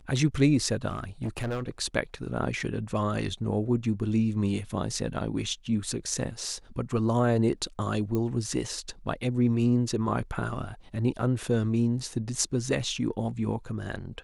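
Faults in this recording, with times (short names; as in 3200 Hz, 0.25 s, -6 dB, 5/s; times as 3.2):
0.89–1.68 clipped -27 dBFS
8.15 pop -18 dBFS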